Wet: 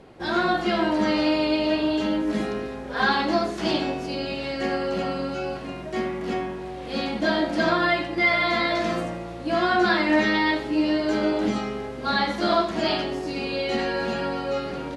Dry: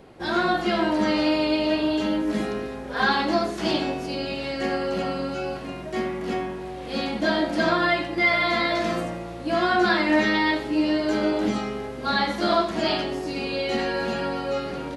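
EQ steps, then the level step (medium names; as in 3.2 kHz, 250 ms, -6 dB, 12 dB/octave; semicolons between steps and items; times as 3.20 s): Bessel low-pass 9.5 kHz; 0.0 dB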